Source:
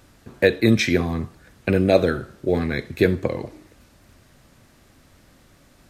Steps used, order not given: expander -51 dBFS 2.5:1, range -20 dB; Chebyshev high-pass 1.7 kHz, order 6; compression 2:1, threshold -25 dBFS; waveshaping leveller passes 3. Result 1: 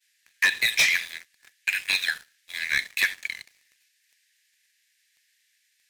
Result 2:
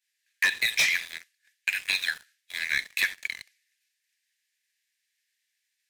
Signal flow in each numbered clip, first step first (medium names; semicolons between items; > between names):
expander > Chebyshev high-pass > compression > waveshaping leveller; Chebyshev high-pass > expander > waveshaping leveller > compression